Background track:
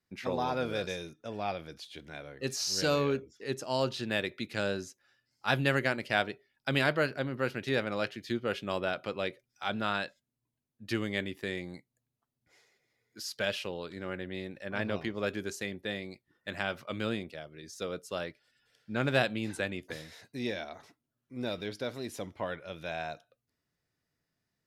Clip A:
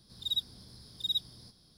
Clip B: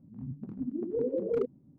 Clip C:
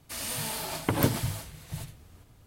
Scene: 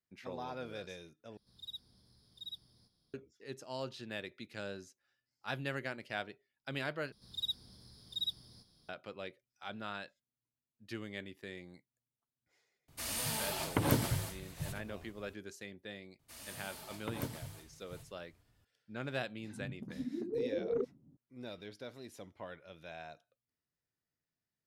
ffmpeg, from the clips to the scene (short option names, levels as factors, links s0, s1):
-filter_complex "[1:a]asplit=2[s0][s1];[3:a]asplit=2[s2][s3];[0:a]volume=0.282[s4];[s0]equalizer=f=6600:t=o:w=1.4:g=-2[s5];[s2]alimiter=limit=0.299:level=0:latency=1:release=62[s6];[2:a]lowpass=1900[s7];[s4]asplit=3[s8][s9][s10];[s8]atrim=end=1.374[s11];[s5]atrim=end=1.77,asetpts=PTS-STARTPTS,volume=0.2[s12];[s9]atrim=start=3.136:end=7.124[s13];[s1]atrim=end=1.77,asetpts=PTS-STARTPTS,volume=0.531[s14];[s10]atrim=start=8.886[s15];[s6]atrim=end=2.46,asetpts=PTS-STARTPTS,volume=0.668,afade=t=in:d=0.004:c=hsin,afade=t=out:st=2.456:d=0.004:c=hsin,adelay=12880[s16];[s3]atrim=end=2.46,asetpts=PTS-STARTPTS,volume=0.168,afade=t=in:d=0.004:c=hsin,afade=t=out:st=2.456:d=0.004:c=hsin,adelay=16190[s17];[s7]atrim=end=1.78,asetpts=PTS-STARTPTS,volume=0.562,afade=t=in:d=0.004:c=hsin,afade=t=out:st=1.776:d=0.004:c=hsin,adelay=19390[s18];[s11][s12]acrossfade=d=0.004:c1=hsin:c2=hsin[s19];[s19][s13]acrossfade=d=0.004:c1=hsin:c2=hsin[s20];[s20][s14]acrossfade=d=0.004:c1=hsin:c2=hsin[s21];[s21][s15]acrossfade=d=0.004:c1=hsin:c2=hsin[s22];[s22][s16][s17][s18]amix=inputs=4:normalize=0"